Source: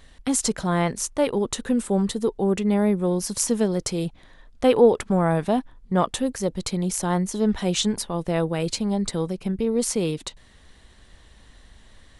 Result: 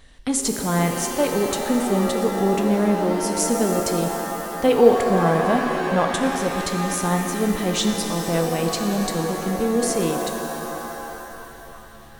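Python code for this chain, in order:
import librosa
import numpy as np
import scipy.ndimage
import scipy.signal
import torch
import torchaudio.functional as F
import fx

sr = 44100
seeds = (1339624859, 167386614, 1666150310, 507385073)

y = fx.rev_shimmer(x, sr, seeds[0], rt60_s=3.2, semitones=7, shimmer_db=-2, drr_db=4.5)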